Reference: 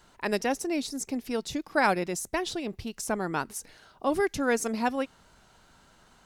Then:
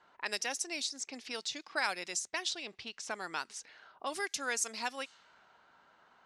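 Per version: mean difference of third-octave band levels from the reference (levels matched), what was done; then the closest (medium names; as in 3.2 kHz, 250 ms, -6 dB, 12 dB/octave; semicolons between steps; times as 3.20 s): 7.0 dB: level-controlled noise filter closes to 1.1 kHz, open at -24.5 dBFS; frequency weighting ITU-R 468; compression 1.5:1, threshold -48 dBFS, peak gain reduction 11.5 dB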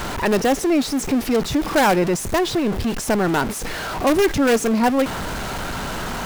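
11.0 dB: jump at every zero crossing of -28 dBFS; treble shelf 2.8 kHz -9.5 dB; in parallel at -6.5 dB: integer overflow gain 18 dB; on the sum: trim +5.5 dB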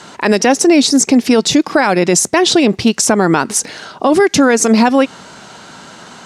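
4.5 dB: Chebyshev band-pass 180–7300 Hz, order 2; compression, threshold -28 dBFS, peak gain reduction 9.5 dB; loudness maximiser +26 dB; trim -1 dB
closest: third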